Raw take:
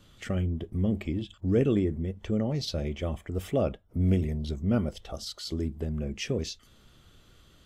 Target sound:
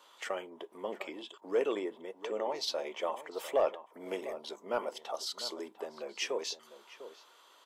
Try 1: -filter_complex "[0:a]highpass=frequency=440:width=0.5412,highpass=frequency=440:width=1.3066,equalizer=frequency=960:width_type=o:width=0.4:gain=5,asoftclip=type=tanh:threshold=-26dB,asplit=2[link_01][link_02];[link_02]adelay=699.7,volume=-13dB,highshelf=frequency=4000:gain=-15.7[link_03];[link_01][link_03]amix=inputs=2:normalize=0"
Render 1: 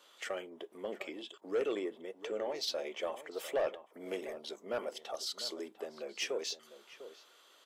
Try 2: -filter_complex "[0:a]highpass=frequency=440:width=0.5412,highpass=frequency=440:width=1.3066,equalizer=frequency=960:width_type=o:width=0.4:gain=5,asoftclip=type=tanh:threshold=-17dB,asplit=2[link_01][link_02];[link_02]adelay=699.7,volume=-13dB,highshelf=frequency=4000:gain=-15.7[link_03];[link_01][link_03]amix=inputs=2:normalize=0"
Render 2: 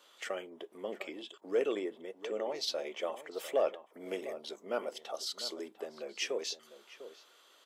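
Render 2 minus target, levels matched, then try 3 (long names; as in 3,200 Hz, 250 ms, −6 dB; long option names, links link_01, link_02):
1,000 Hz band −3.5 dB
-filter_complex "[0:a]highpass=frequency=440:width=0.5412,highpass=frequency=440:width=1.3066,equalizer=frequency=960:width_type=o:width=0.4:gain=16,asoftclip=type=tanh:threshold=-17dB,asplit=2[link_01][link_02];[link_02]adelay=699.7,volume=-13dB,highshelf=frequency=4000:gain=-15.7[link_03];[link_01][link_03]amix=inputs=2:normalize=0"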